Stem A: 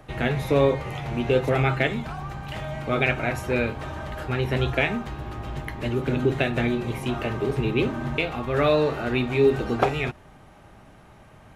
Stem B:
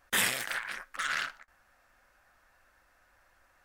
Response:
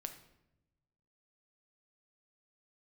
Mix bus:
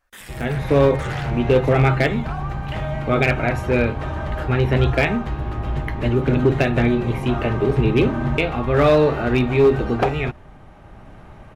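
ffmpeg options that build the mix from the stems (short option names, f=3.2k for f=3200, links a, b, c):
-filter_complex "[0:a]highshelf=f=4.1k:g=-11,adelay=200,volume=-3dB[a];[1:a]alimiter=level_in=0.5dB:limit=-24dB:level=0:latency=1:release=75,volume=-0.5dB,volume=-7.5dB[b];[a][b]amix=inputs=2:normalize=0,lowshelf=f=60:g=9,dynaudnorm=f=400:g=3:m=10dB,volume=8.5dB,asoftclip=hard,volume=-8.5dB"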